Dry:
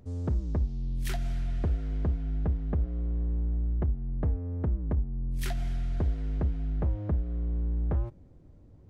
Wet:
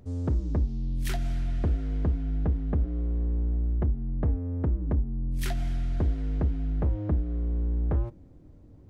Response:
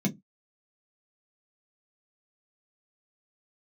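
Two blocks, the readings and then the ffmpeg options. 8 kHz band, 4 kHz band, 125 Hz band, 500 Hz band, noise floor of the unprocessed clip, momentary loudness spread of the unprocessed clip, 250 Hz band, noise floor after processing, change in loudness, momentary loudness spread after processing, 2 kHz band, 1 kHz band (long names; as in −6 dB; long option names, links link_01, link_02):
can't be measured, +2.0 dB, +2.0 dB, +2.5 dB, −53 dBFS, 3 LU, +3.5 dB, −51 dBFS, +2.0 dB, 3 LU, +2.0 dB, +2.0 dB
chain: -filter_complex "[0:a]asplit=2[link_01][link_02];[1:a]atrim=start_sample=2205,asetrate=66150,aresample=44100,adelay=17[link_03];[link_02][link_03]afir=irnorm=-1:irlink=0,volume=-25dB[link_04];[link_01][link_04]amix=inputs=2:normalize=0,volume=2dB"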